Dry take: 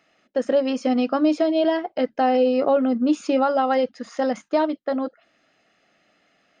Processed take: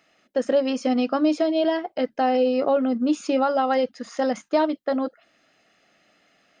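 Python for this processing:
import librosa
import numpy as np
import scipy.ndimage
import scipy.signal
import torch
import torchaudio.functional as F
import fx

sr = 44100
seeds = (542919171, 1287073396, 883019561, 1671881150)

p1 = fx.high_shelf(x, sr, hz=4700.0, db=5.0)
p2 = fx.rider(p1, sr, range_db=4, speed_s=2.0)
p3 = p1 + F.gain(torch.from_numpy(p2), 0.0).numpy()
y = F.gain(torch.from_numpy(p3), -7.5).numpy()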